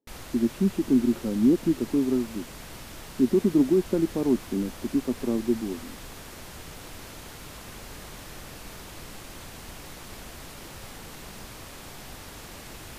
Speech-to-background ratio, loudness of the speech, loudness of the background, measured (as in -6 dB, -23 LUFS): 16.5 dB, -25.5 LUFS, -42.0 LUFS